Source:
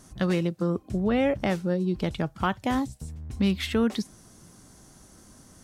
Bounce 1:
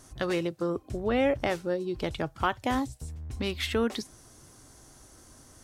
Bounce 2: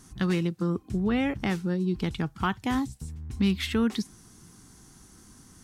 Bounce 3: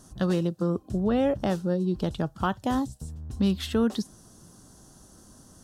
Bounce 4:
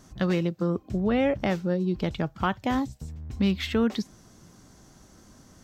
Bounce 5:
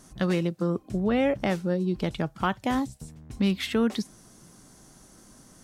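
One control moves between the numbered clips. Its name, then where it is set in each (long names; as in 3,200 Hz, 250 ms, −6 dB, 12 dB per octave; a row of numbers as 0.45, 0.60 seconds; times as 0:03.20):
parametric band, centre frequency: 190, 590, 2,200, 9,800, 77 Hertz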